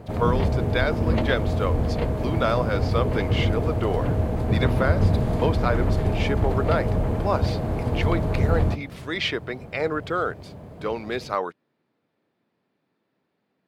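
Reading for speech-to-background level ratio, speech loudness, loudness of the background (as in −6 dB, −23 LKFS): −4.0 dB, −28.5 LKFS, −24.5 LKFS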